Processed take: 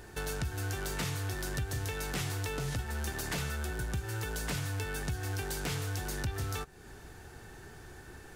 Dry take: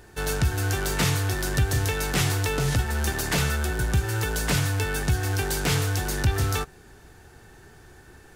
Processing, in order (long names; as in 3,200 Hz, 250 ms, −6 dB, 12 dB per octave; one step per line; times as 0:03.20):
downward compressor 2.5 to 1, threshold −38 dBFS, peak gain reduction 13.5 dB